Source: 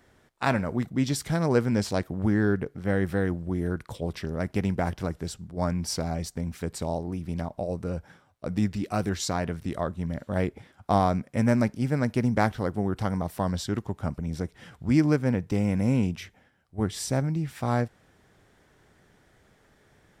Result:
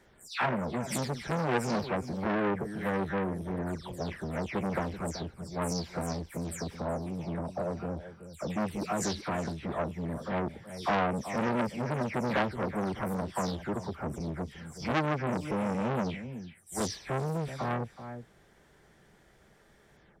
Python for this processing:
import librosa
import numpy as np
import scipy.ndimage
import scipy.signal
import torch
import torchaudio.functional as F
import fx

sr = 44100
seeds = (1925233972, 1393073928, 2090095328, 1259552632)

p1 = fx.spec_delay(x, sr, highs='early', ms=234)
p2 = p1 + fx.echo_single(p1, sr, ms=377, db=-15.0, dry=0)
y = fx.transformer_sat(p2, sr, knee_hz=1600.0)